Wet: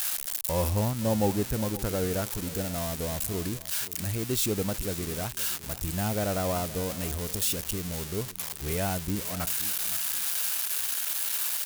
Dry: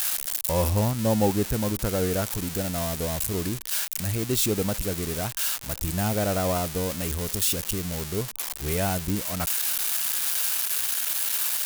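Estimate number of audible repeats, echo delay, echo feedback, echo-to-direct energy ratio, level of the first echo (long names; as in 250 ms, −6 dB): 2, 522 ms, 20%, −16.5 dB, −16.5 dB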